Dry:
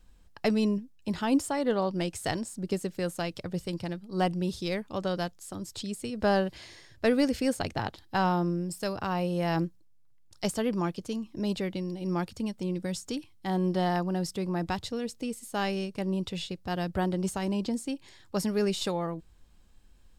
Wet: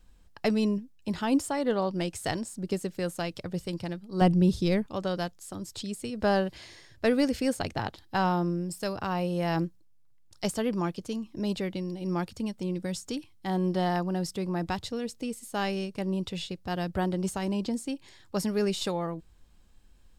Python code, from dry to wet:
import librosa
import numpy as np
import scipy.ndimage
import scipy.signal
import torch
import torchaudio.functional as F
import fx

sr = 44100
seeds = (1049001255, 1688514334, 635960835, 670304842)

y = fx.low_shelf(x, sr, hz=370.0, db=11.0, at=(4.21, 4.86))